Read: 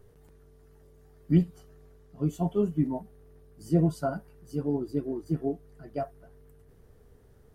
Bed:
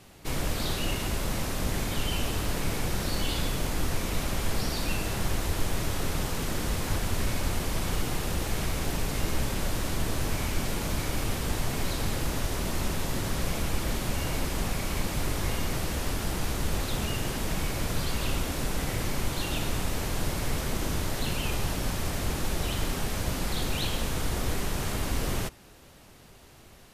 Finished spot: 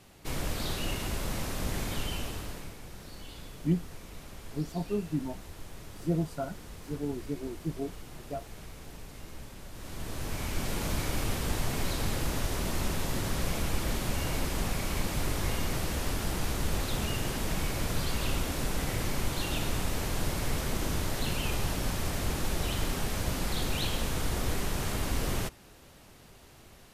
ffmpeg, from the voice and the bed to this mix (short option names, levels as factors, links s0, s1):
-filter_complex "[0:a]adelay=2350,volume=0.531[s0];[1:a]volume=3.76,afade=t=out:st=1.93:d=0.82:silence=0.223872,afade=t=in:st=9.72:d=1.13:silence=0.177828[s1];[s0][s1]amix=inputs=2:normalize=0"